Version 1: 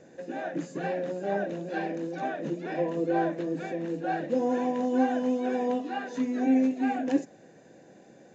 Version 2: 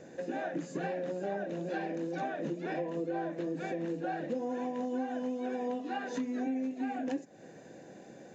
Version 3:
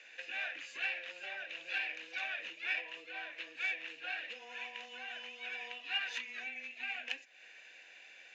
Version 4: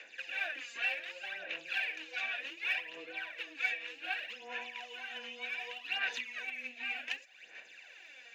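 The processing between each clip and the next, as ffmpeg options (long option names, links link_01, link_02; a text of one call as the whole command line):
ffmpeg -i in.wav -af "acompressor=threshold=-35dB:ratio=6,volume=2.5dB" out.wav
ffmpeg -i in.wav -af "adynamicsmooth=sensitivity=4:basefreq=3400,highpass=frequency=2600:width_type=q:width=4.5,afreqshift=-13,volume=8dB" out.wav
ffmpeg -i in.wav -af "aphaser=in_gain=1:out_gain=1:delay=4.3:decay=0.63:speed=0.66:type=sinusoidal" out.wav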